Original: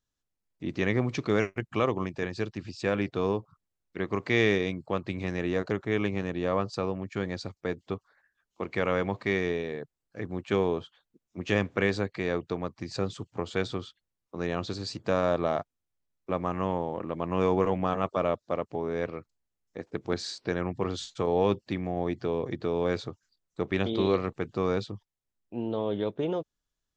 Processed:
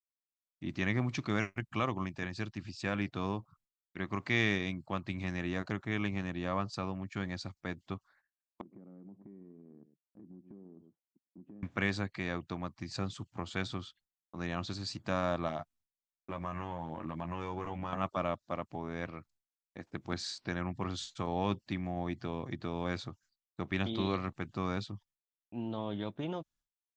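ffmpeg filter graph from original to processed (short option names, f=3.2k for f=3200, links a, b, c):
-filter_complex "[0:a]asettb=1/sr,asplit=3[a][b][c];[a]atrim=end=8.614[d];[b]atrim=start=8.61:end=11.63,asetpts=PTS-STARTPTS,afade=t=in:d=0.004:c=qsin,afade=t=out:st=3.016:d=0.004:c=qsin,asuperpass=centerf=260:order=4:qfactor=1.2,aecho=1:1:106:0.126,atrim=end_sample=133182,acompressor=threshold=-44dB:ratio=4:attack=3.2:release=140:knee=1:detection=peak[e];[c]atrim=start=11.626[f];[d][e]acrossfade=d=0.004:c1=hsin:c2=qsin[g];[g][f]acrossfade=d=0.004:c1=qsin:c2=hsin,asettb=1/sr,asplit=3[h][i][j];[h]atrim=end=15.484[k];[i]atrim=start=15.48:end=17.93,asetpts=PTS-STARTPTS,afade=t=in:d=0.004:c=qsin,afade=t=out:st=2.446:d=0.004:c=qsin,acompressor=threshold=-29dB:ratio=2.5:attack=3.2:release=140:knee=1:detection=peak,asplit=2[l][m];[m]adelay=13,volume=-5dB[n];[l][n]amix=inputs=2:normalize=0,atrim=end_sample=108045[o];[j]atrim=start=17.926[p];[k][o]acrossfade=d=0.004:c1=hsin:c2=qsin[q];[q][p]acrossfade=d=0.004:c1=qsin:c2=hsin,agate=range=-33dB:threshold=-56dB:ratio=3:detection=peak,equalizer=f=450:t=o:w=0.59:g=-13,volume=-3dB"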